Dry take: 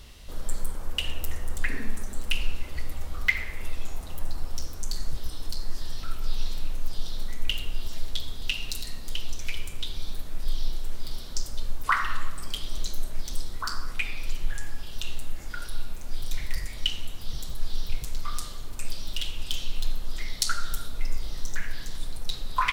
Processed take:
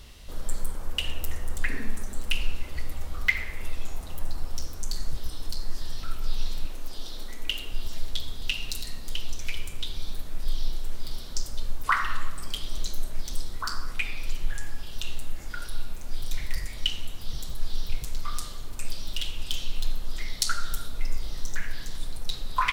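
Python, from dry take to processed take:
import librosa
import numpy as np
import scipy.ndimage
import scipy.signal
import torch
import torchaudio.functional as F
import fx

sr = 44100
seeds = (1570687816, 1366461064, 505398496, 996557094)

y = fx.low_shelf_res(x, sr, hz=210.0, db=-7.0, q=1.5, at=(6.65, 7.72))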